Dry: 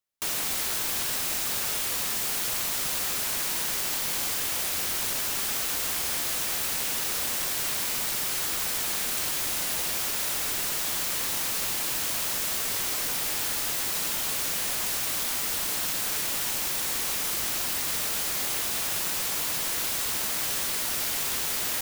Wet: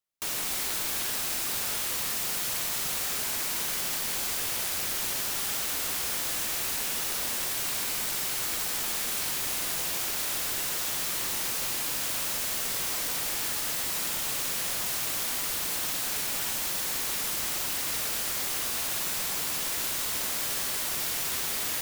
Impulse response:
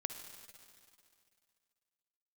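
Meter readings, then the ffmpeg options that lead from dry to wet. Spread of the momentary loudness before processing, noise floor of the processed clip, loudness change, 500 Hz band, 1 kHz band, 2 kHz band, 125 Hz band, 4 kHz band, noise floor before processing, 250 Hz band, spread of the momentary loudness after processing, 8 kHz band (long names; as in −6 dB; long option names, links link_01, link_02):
0 LU, −31 dBFS, −2.0 dB, −1.5 dB, −1.5 dB, −1.5 dB, −1.5 dB, −1.5 dB, −29 dBFS, −1.5 dB, 0 LU, −1.5 dB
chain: -filter_complex "[1:a]atrim=start_sample=2205,asetrate=48510,aresample=44100[link_01];[0:a][link_01]afir=irnorm=-1:irlink=0"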